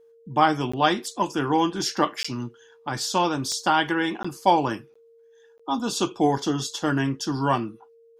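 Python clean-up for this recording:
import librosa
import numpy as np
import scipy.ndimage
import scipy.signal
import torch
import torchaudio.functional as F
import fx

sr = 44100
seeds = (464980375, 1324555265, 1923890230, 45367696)

y = fx.fix_declick_ar(x, sr, threshold=10.0)
y = fx.notch(y, sr, hz=460.0, q=30.0)
y = fx.fix_interpolate(y, sr, at_s=(0.72, 2.23, 4.23, 4.94, 5.58), length_ms=15.0)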